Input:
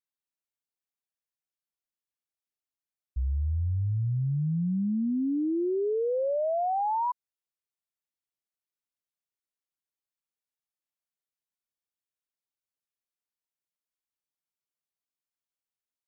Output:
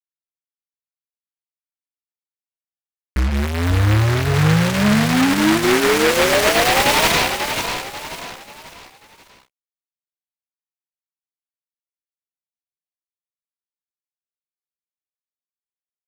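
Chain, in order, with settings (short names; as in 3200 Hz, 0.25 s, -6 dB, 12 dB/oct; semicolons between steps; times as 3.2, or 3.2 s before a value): low shelf 120 Hz -8.5 dB; de-hum 66.32 Hz, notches 31; fuzz box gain 56 dB, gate -56 dBFS; doubler 19 ms -6 dB; feedback echo 0.539 s, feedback 38%, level -7 dB; noise-modulated delay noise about 1400 Hz, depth 0.23 ms; gain -3.5 dB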